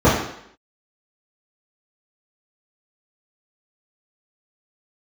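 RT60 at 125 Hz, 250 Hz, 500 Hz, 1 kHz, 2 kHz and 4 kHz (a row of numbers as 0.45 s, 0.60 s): 0.55 s, 0.70 s, 0.70 s, 0.70 s, 0.75 s, 0.70 s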